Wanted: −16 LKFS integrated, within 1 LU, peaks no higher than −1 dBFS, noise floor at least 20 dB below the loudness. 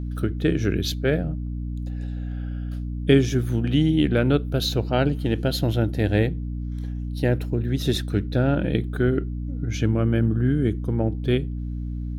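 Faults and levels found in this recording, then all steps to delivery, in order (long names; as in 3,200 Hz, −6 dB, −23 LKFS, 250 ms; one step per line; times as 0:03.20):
mains hum 60 Hz; hum harmonics up to 300 Hz; level of the hum −27 dBFS; integrated loudness −24.0 LKFS; sample peak −4.0 dBFS; target loudness −16.0 LKFS
→ hum removal 60 Hz, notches 5
level +8 dB
brickwall limiter −1 dBFS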